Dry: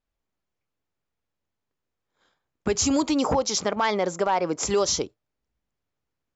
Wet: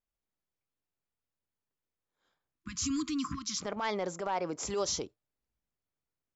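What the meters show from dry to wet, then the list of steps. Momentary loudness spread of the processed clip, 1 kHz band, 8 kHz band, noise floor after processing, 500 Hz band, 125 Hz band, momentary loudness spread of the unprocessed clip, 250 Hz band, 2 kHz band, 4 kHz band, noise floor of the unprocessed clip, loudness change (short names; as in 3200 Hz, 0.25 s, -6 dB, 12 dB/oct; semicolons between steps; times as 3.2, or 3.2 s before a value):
6 LU, -11.0 dB, n/a, under -85 dBFS, -11.5 dB, -9.5 dB, 5 LU, -9.5 dB, -10.0 dB, -9.5 dB, -83 dBFS, -10.0 dB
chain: transient shaper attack -7 dB, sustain +1 dB; spectral delete 2.6–3.62, 330–1000 Hz; gain -8.5 dB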